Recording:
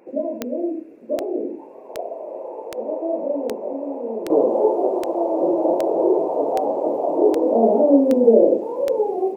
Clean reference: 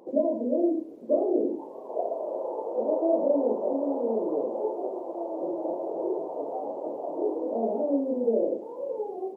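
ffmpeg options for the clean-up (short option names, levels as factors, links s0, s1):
-af "adeclick=t=4,agate=range=0.0891:threshold=0.0501,asetnsamples=n=441:p=0,asendcmd='4.3 volume volume -12dB',volume=1"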